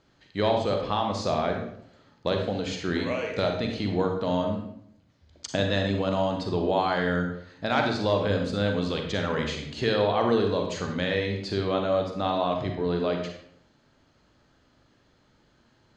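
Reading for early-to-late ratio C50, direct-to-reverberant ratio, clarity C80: 4.5 dB, 2.5 dB, 7.5 dB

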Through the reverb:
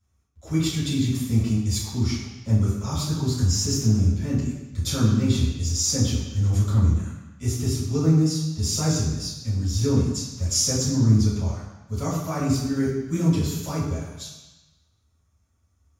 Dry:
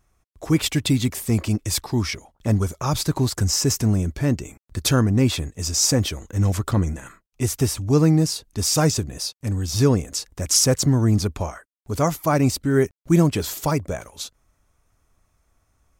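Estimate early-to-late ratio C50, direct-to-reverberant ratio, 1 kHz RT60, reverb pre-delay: 1.0 dB, -11.0 dB, 1.1 s, 3 ms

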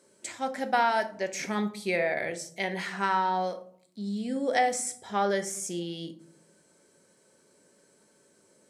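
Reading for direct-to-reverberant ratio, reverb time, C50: 6.5 dB, 0.60 s, 13.5 dB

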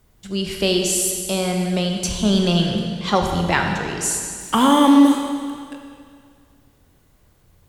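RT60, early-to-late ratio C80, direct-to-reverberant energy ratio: 2.1 s, 4.5 dB, 2.0 dB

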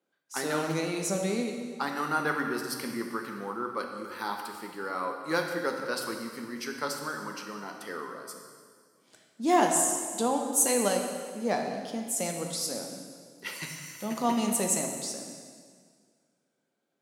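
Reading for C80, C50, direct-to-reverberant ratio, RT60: 5.5 dB, 4.0 dB, 2.5 dB, 1.9 s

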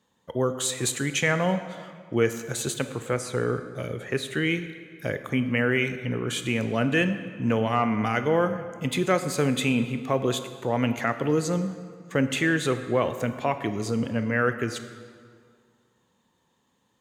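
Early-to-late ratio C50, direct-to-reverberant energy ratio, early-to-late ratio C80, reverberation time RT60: 10.5 dB, 9.5 dB, 11.5 dB, 2.0 s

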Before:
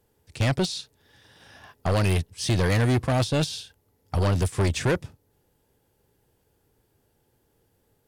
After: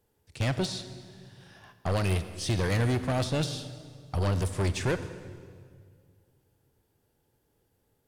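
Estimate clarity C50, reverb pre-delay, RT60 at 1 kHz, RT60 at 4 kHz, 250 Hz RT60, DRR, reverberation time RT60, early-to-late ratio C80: 11.5 dB, 26 ms, 1.8 s, 1.7 s, 2.4 s, 11.0 dB, 1.9 s, 12.5 dB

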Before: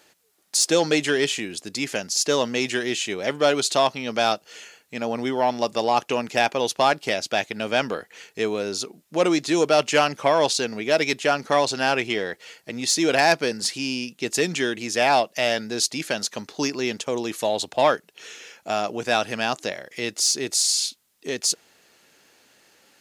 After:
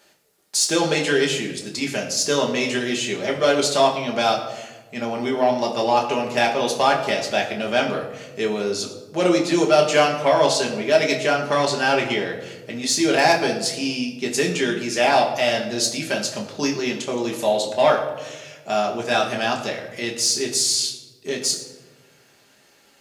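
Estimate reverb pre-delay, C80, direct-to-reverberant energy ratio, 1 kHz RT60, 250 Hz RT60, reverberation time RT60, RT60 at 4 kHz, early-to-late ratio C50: 5 ms, 10.0 dB, -1.0 dB, 1.0 s, 1.7 s, 1.2 s, 0.65 s, 8.0 dB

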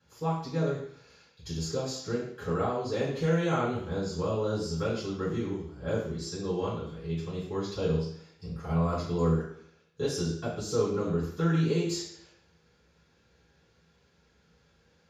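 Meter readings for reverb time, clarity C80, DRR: 0.65 s, 6.0 dB, -10.0 dB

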